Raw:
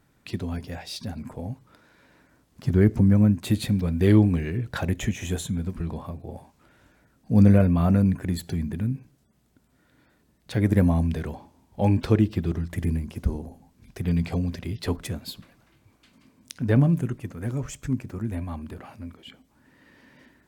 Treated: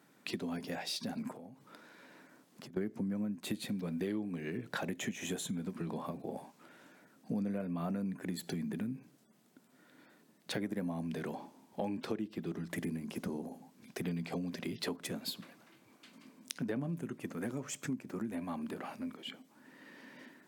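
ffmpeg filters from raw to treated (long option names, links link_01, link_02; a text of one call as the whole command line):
ffmpeg -i in.wav -filter_complex "[0:a]asplit=3[link_01][link_02][link_03];[link_01]afade=type=out:start_time=1.31:duration=0.02[link_04];[link_02]acompressor=threshold=-44dB:ratio=12:attack=3.2:release=140:knee=1:detection=peak,afade=type=in:start_time=1.31:duration=0.02,afade=type=out:start_time=2.76:duration=0.02[link_05];[link_03]afade=type=in:start_time=2.76:duration=0.02[link_06];[link_04][link_05][link_06]amix=inputs=3:normalize=0,highpass=frequency=180:width=0.5412,highpass=frequency=180:width=1.3066,acompressor=threshold=-36dB:ratio=6,volume=1dB" out.wav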